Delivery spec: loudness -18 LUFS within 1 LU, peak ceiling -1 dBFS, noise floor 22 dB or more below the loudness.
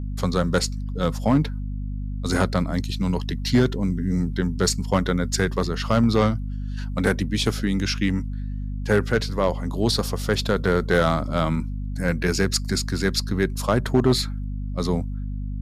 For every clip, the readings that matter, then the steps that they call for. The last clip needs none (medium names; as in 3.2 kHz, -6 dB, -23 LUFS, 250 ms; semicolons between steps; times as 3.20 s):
clipped samples 0.3%; clipping level -10.5 dBFS; hum 50 Hz; highest harmonic 250 Hz; hum level -26 dBFS; loudness -23.5 LUFS; peak level -10.5 dBFS; loudness target -18.0 LUFS
-> clip repair -10.5 dBFS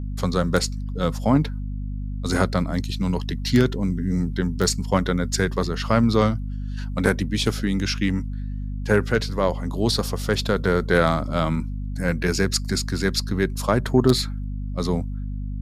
clipped samples 0.0%; hum 50 Hz; highest harmonic 250 Hz; hum level -26 dBFS
-> de-hum 50 Hz, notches 5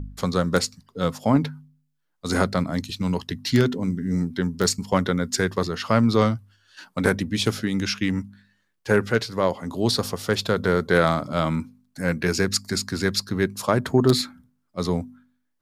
hum not found; loudness -23.5 LUFS; peak level -3.0 dBFS; loudness target -18.0 LUFS
-> trim +5.5 dB; peak limiter -1 dBFS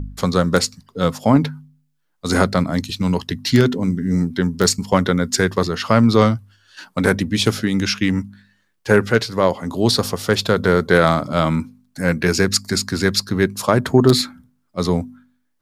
loudness -18.5 LUFS; peak level -1.0 dBFS; noise floor -67 dBFS